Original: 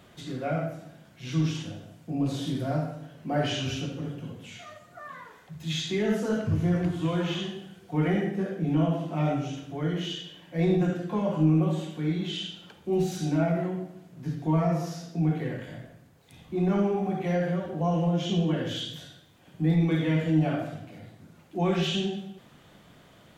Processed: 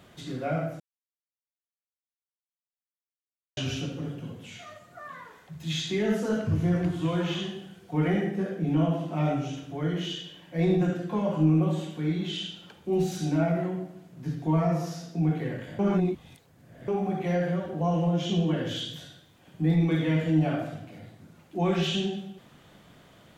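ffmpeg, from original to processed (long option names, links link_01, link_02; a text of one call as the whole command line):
ffmpeg -i in.wav -filter_complex "[0:a]asplit=5[link_01][link_02][link_03][link_04][link_05];[link_01]atrim=end=0.8,asetpts=PTS-STARTPTS,afade=type=out:start_time=0.796:duration=0.004:curve=hsin[link_06];[link_02]atrim=start=0.8:end=3.57,asetpts=PTS-STARTPTS,volume=0[link_07];[link_03]atrim=start=3.57:end=15.792,asetpts=PTS-STARTPTS,afade=type=in:duration=0.004:curve=hsin[link_08];[link_04]atrim=start=15.788:end=16.882,asetpts=PTS-STARTPTS,areverse[link_09];[link_05]atrim=start=16.878[link_10];[link_06][link_07][link_08]concat=n=3:v=0:a=1[link_11];[link_11][link_09]acrossfade=duration=0.004:curve1=hsin:curve2=hsin[link_12];[link_12][link_10]acrossfade=duration=0.004:curve1=hsin:curve2=hsin" out.wav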